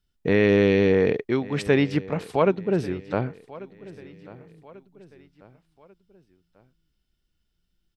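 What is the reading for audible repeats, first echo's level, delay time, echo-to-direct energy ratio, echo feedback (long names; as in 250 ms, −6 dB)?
3, −19.5 dB, 1,141 ms, −18.5 dB, 44%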